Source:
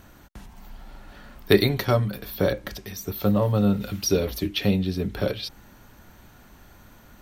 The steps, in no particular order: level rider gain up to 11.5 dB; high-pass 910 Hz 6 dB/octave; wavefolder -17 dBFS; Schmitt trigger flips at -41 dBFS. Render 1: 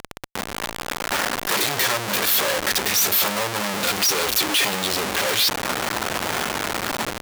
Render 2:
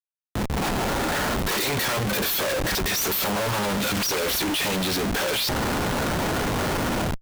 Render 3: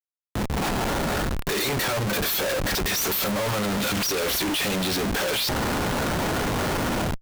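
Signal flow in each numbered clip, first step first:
wavefolder > level rider > Schmitt trigger > high-pass; wavefolder > high-pass > level rider > Schmitt trigger; high-pass > level rider > Schmitt trigger > wavefolder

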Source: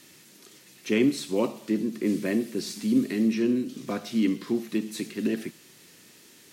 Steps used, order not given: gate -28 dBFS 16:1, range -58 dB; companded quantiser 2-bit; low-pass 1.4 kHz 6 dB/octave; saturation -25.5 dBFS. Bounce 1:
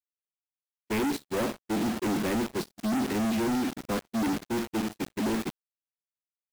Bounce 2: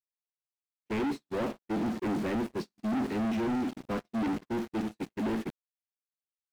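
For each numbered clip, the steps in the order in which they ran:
saturation > low-pass > companded quantiser > gate; companded quantiser > low-pass > gate > saturation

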